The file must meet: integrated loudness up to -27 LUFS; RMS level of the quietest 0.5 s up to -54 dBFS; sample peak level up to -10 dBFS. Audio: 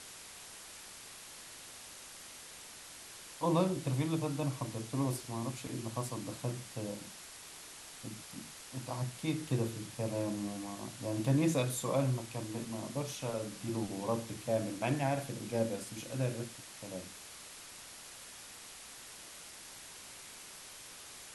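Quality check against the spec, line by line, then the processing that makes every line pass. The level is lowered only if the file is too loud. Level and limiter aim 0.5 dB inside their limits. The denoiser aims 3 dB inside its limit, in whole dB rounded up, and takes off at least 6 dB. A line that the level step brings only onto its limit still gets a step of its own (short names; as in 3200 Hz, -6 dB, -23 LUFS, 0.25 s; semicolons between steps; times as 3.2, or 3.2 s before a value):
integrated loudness -38.5 LUFS: OK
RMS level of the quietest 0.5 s -51 dBFS: fail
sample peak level -17.0 dBFS: OK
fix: denoiser 6 dB, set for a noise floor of -51 dBFS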